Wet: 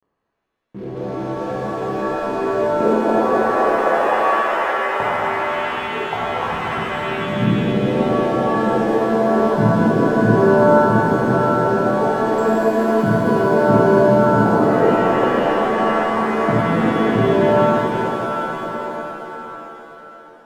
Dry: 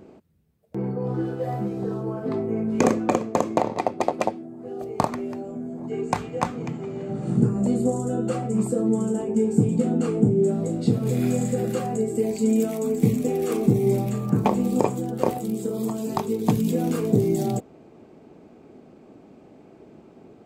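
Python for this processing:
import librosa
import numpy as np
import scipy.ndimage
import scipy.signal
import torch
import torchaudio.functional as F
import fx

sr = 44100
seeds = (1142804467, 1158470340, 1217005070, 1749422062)

y = fx.envelope_sharpen(x, sr, power=3.0)
y = np.sign(y) * np.maximum(np.abs(y) - 10.0 ** (-40.0 / 20.0), 0.0)
y = fx.rev_shimmer(y, sr, seeds[0], rt60_s=3.8, semitones=7, shimmer_db=-2, drr_db=-7.5)
y = y * 10.0 ** (-3.5 / 20.0)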